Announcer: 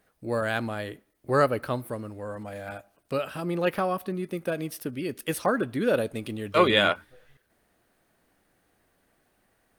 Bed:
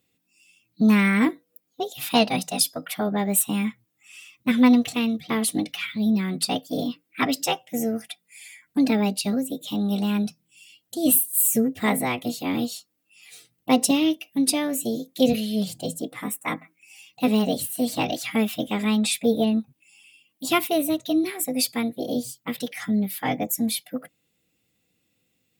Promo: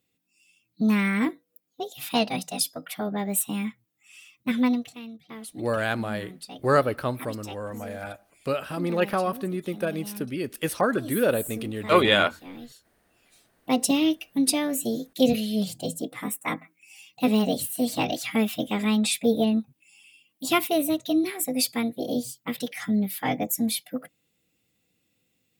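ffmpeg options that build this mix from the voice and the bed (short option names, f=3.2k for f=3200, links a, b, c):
-filter_complex "[0:a]adelay=5350,volume=1.5dB[a];[1:a]volume=11dB,afade=t=out:st=4.56:d=0.38:silence=0.251189,afade=t=in:st=13.29:d=0.74:silence=0.16788[b];[a][b]amix=inputs=2:normalize=0"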